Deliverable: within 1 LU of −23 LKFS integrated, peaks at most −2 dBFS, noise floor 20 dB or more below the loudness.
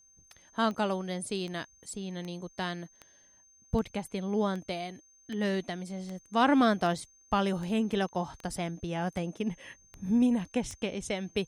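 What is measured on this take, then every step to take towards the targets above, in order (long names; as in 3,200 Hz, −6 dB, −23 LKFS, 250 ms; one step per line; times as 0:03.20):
number of clicks 14; interfering tone 6,300 Hz; level of the tone −59 dBFS; integrated loudness −31.5 LKFS; sample peak −12.5 dBFS; target loudness −23.0 LKFS
→ click removal
notch filter 6,300 Hz, Q 30
level +8.5 dB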